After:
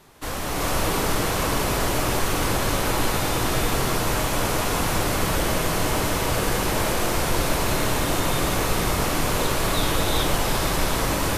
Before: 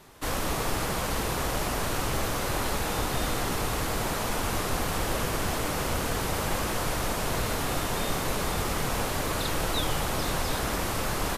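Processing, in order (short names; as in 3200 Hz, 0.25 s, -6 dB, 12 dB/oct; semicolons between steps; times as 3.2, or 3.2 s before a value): non-linear reverb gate 0.45 s rising, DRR -4.5 dB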